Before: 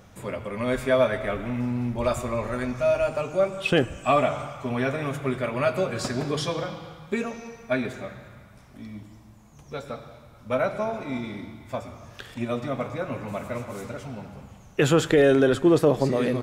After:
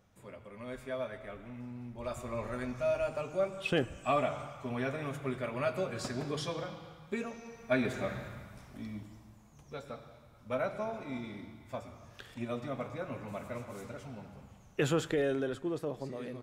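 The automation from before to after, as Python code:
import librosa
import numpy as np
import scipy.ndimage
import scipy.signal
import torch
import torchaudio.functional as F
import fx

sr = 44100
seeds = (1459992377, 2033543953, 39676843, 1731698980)

y = fx.gain(x, sr, db=fx.line((1.91, -17.0), (2.4, -9.0), (7.43, -9.0), (8.16, 2.5), (9.79, -9.0), (14.8, -9.0), (15.73, -17.5)))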